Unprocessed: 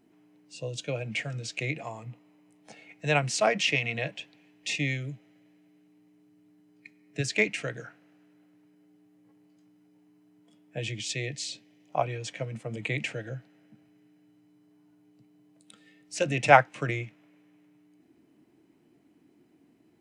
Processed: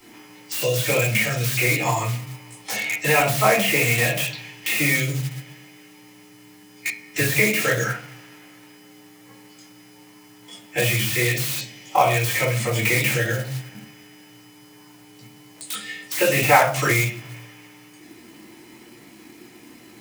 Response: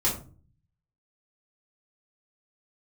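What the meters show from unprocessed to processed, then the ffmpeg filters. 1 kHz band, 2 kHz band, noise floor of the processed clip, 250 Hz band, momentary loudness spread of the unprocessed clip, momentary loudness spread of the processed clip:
+6.5 dB, +10.0 dB, -49 dBFS, +8.5 dB, 18 LU, 14 LU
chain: -filter_complex "[0:a]asplit=2[a][b];[b]acompressor=threshold=-38dB:ratio=6,volume=0dB[c];[a][c]amix=inputs=2:normalize=0[d];[1:a]atrim=start_sample=2205[e];[d][e]afir=irnorm=-1:irlink=0,acrossover=split=950|3300[f][g][h];[f]acompressor=threshold=-17dB:ratio=4[i];[g]acompressor=threshold=-32dB:ratio=4[j];[h]acompressor=threshold=-30dB:ratio=4[k];[i][j][k]amix=inputs=3:normalize=0,acrossover=split=220|2400[l][m][n];[n]aeval=exprs='(mod(63.1*val(0)+1,2)-1)/63.1':c=same[o];[l][m][o]amix=inputs=3:normalize=0,acrusher=bits=8:mode=log:mix=0:aa=0.000001,tiltshelf=f=780:g=-10,volume=4dB"

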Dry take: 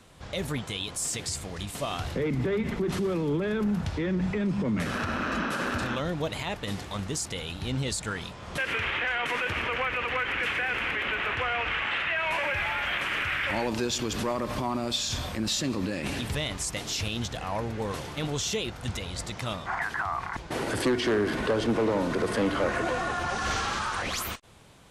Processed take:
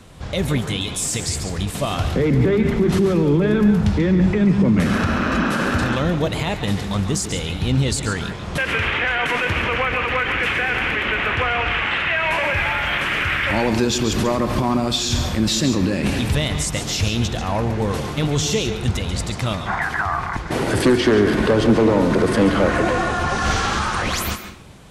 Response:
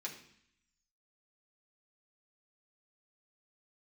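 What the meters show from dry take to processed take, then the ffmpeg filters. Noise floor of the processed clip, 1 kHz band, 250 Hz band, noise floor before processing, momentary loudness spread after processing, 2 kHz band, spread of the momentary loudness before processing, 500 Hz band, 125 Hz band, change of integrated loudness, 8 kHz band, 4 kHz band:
-29 dBFS, +8.0 dB, +11.5 dB, -42 dBFS, 7 LU, +8.0 dB, 7 LU, +9.5 dB, +13.0 dB, +9.5 dB, +7.5 dB, +7.5 dB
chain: -filter_complex "[0:a]lowshelf=f=300:g=6.5,asplit=2[a][b];[1:a]atrim=start_sample=2205,adelay=137[c];[b][c]afir=irnorm=-1:irlink=0,volume=-7dB[d];[a][d]amix=inputs=2:normalize=0,volume=7dB"

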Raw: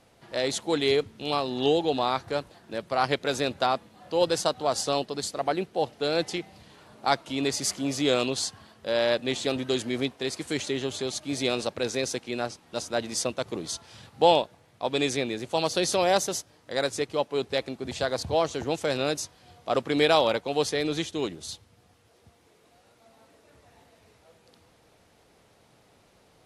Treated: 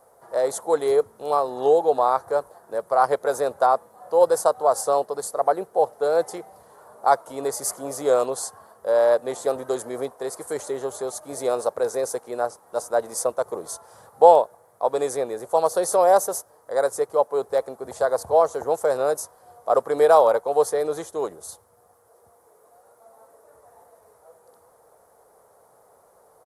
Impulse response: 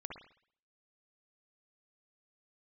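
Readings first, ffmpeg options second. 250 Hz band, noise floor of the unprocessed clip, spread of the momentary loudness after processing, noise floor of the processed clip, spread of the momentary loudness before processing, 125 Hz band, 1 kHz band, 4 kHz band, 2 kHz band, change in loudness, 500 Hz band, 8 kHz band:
-6.0 dB, -61 dBFS, 13 LU, -58 dBFS, 10 LU, -9.0 dB, +7.0 dB, -12.5 dB, -4.0 dB, +5.0 dB, +6.5 dB, +1.5 dB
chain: -af "firequalizer=gain_entry='entry(300,0);entry(450,15);entry(1100,11);entry(2600,-22);entry(10000,-4)':delay=0.05:min_phase=1,crystalizer=i=9.5:c=0,volume=-9dB"

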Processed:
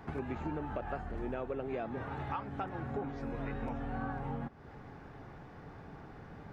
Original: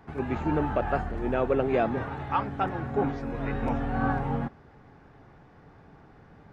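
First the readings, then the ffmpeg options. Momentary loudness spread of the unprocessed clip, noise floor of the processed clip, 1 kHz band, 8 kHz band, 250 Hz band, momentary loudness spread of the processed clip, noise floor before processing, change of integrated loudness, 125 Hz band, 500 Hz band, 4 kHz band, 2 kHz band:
6 LU, -52 dBFS, -10.5 dB, n/a, -10.0 dB, 13 LU, -54 dBFS, -11.0 dB, -9.0 dB, -11.5 dB, -10.0 dB, -10.0 dB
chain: -af "acompressor=threshold=-39dB:ratio=6,volume=3dB"

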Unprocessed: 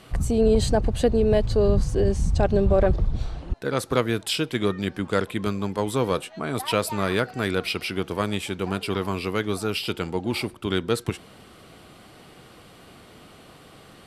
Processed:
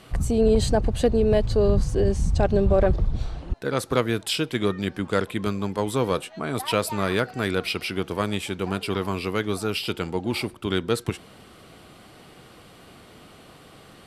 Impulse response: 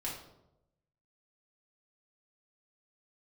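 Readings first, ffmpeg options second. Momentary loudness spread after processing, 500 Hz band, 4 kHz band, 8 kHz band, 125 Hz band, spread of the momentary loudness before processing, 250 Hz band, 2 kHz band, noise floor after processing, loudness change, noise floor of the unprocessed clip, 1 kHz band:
8 LU, 0.0 dB, 0.0 dB, 0.0 dB, 0.0 dB, 8 LU, 0.0 dB, 0.0 dB, -49 dBFS, 0.0 dB, -49 dBFS, 0.0 dB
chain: -af "asoftclip=type=hard:threshold=-9dB"

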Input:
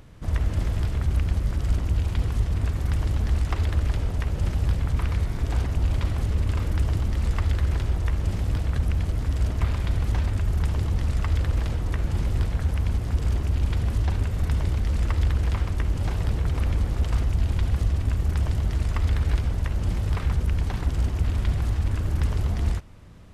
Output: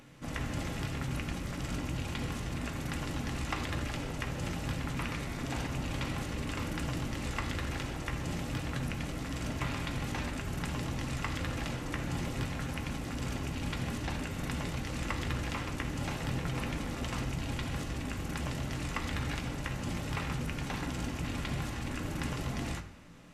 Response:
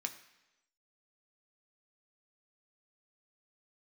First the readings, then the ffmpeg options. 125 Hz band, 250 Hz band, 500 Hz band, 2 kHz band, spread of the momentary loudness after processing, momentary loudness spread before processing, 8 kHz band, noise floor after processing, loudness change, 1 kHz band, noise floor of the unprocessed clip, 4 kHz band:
-12.5 dB, -2.0 dB, -3.5 dB, +1.0 dB, 2 LU, 2 LU, n/a, -39 dBFS, -10.5 dB, -1.0 dB, -30 dBFS, +0.5 dB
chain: -filter_complex "[1:a]atrim=start_sample=2205,asetrate=48510,aresample=44100[a];[0:a][a]afir=irnorm=-1:irlink=0,volume=1.5dB"

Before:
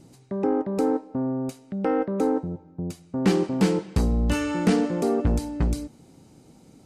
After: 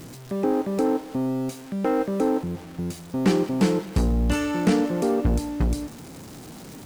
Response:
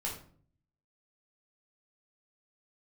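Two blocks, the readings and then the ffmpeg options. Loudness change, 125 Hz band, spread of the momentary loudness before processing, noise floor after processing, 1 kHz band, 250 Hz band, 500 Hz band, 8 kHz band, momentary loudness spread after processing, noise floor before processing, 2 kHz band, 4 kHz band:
+1.0 dB, +0.5 dB, 11 LU, -42 dBFS, +1.0 dB, +1.0 dB, +0.5 dB, +2.0 dB, 14 LU, -53 dBFS, +1.0 dB, +1.5 dB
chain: -af "aeval=exprs='val(0)+0.5*0.015*sgn(val(0))':c=same,acrusher=bits=7:mix=0:aa=0.5"

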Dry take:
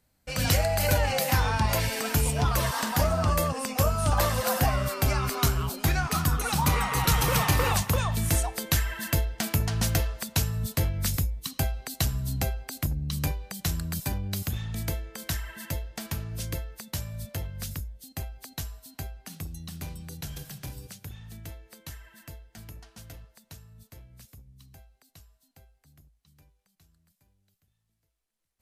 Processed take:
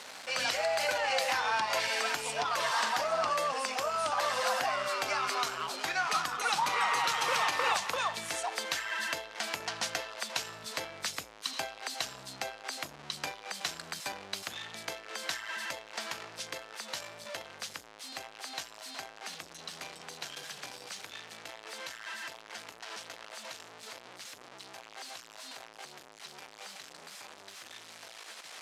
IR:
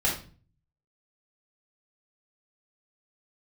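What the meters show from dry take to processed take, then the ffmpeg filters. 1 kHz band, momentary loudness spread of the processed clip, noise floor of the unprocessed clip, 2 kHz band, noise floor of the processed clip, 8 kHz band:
-0.5 dB, 17 LU, -74 dBFS, +0.5 dB, -53 dBFS, -6.5 dB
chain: -af "aeval=exprs='val(0)+0.5*0.0211*sgn(val(0))':c=same,alimiter=limit=-15dB:level=0:latency=1:release=133,highpass=650,lowpass=5.7k"

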